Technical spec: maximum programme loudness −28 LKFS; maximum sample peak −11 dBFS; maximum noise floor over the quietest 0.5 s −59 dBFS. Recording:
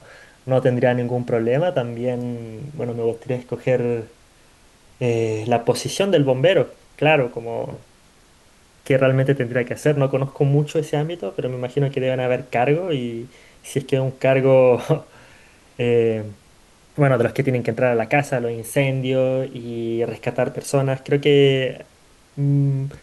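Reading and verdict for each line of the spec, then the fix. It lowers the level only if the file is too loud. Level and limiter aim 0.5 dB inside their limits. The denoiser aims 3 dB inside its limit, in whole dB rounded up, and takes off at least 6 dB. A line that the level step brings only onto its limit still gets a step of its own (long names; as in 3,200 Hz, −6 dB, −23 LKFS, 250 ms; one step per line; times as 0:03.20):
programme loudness −20.5 LKFS: out of spec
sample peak −4.0 dBFS: out of spec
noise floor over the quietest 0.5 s −53 dBFS: out of spec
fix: level −8 dB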